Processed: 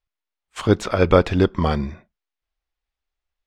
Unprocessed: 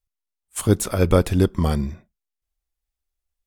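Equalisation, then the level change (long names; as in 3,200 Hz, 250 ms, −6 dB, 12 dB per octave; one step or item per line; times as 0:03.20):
high-frequency loss of the air 190 metres
low-shelf EQ 380 Hz −10.5 dB
+8.0 dB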